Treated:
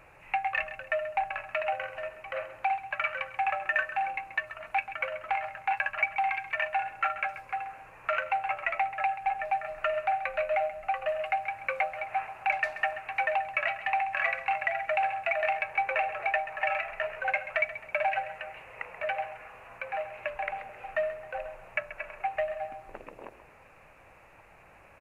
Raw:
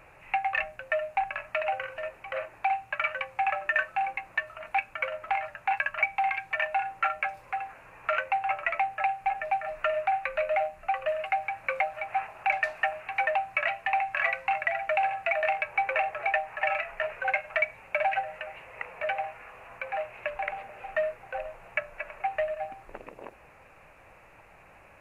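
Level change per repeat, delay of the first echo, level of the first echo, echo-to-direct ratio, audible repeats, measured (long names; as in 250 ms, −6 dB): −8.0 dB, 133 ms, −13.0 dB, −12.5 dB, 2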